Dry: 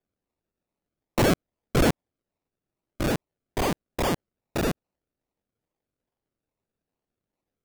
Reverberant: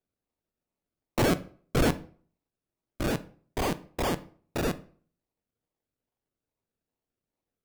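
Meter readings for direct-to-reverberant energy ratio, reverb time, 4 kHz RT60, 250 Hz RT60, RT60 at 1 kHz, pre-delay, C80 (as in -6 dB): 11.0 dB, 0.45 s, 0.35 s, 0.45 s, 0.45 s, 3 ms, 22.5 dB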